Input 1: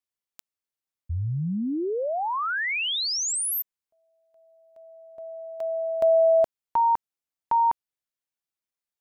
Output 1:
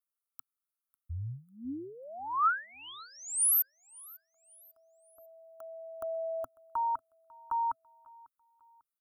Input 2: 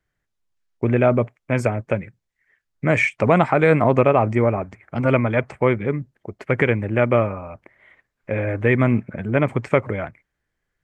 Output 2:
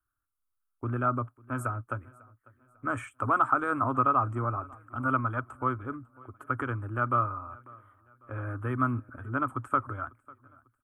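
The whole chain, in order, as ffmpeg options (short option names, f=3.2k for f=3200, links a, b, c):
-filter_complex "[0:a]firequalizer=gain_entry='entry(120,0);entry(170,-30);entry(260,1);entry(450,-13);entry(870,-3);entry(1300,14);entry(2000,-21);entry(3100,-9);entry(4700,-22);entry(9400,11)':delay=0.05:min_phase=1,asplit=2[a][b];[b]aecho=0:1:547|1094|1641:0.0631|0.0252|0.0101[c];[a][c]amix=inputs=2:normalize=0,volume=-9dB"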